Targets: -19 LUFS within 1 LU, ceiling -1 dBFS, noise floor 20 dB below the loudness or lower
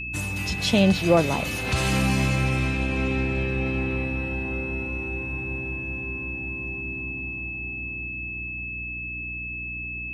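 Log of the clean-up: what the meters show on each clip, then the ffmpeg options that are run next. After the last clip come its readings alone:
hum 60 Hz; highest harmonic 300 Hz; hum level -37 dBFS; steady tone 2.6 kHz; tone level -31 dBFS; loudness -26.0 LUFS; peak level -5.5 dBFS; loudness target -19.0 LUFS
-> -af "bandreject=f=60:t=h:w=4,bandreject=f=120:t=h:w=4,bandreject=f=180:t=h:w=4,bandreject=f=240:t=h:w=4,bandreject=f=300:t=h:w=4"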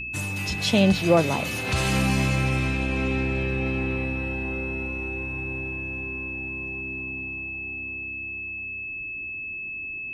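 hum not found; steady tone 2.6 kHz; tone level -31 dBFS
-> -af "bandreject=f=2600:w=30"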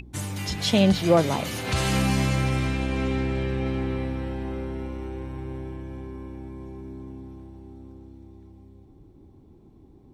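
steady tone not found; loudness -26.0 LUFS; peak level -6.0 dBFS; loudness target -19.0 LUFS
-> -af "volume=2.24,alimiter=limit=0.891:level=0:latency=1"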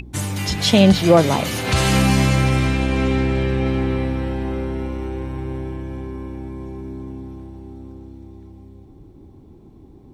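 loudness -19.0 LUFS; peak level -1.0 dBFS; noise floor -45 dBFS

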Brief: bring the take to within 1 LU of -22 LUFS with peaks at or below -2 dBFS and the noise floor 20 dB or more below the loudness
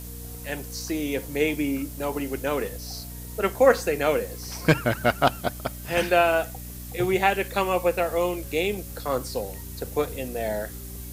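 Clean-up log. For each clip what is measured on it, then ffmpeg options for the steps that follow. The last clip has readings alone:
hum 60 Hz; highest harmonic 300 Hz; hum level -37 dBFS; noise floor -38 dBFS; noise floor target -46 dBFS; loudness -25.5 LUFS; peak level -5.0 dBFS; loudness target -22.0 LUFS
-> -af "bandreject=f=60:t=h:w=4,bandreject=f=120:t=h:w=4,bandreject=f=180:t=h:w=4,bandreject=f=240:t=h:w=4,bandreject=f=300:t=h:w=4"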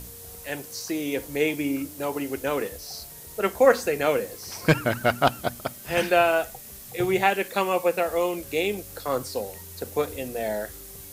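hum not found; noise floor -43 dBFS; noise floor target -46 dBFS
-> -af "afftdn=nr=6:nf=-43"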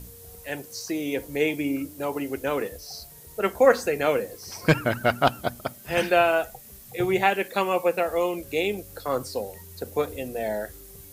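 noise floor -47 dBFS; loudness -25.5 LUFS; peak level -4.5 dBFS; loudness target -22.0 LUFS
-> -af "volume=1.5,alimiter=limit=0.794:level=0:latency=1"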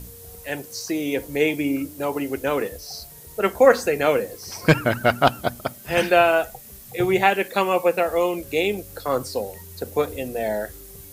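loudness -22.0 LUFS; peak level -2.0 dBFS; noise floor -43 dBFS

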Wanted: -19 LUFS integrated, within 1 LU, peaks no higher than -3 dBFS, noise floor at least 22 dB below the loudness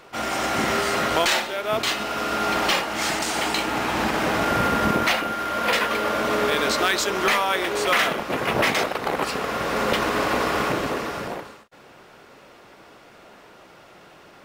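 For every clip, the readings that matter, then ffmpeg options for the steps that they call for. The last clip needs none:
loudness -22.5 LUFS; peak level -9.5 dBFS; loudness target -19.0 LUFS
-> -af "volume=1.5"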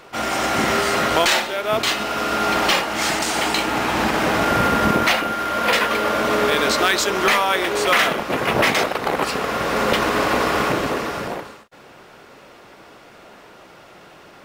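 loudness -19.0 LUFS; peak level -6.0 dBFS; noise floor -45 dBFS

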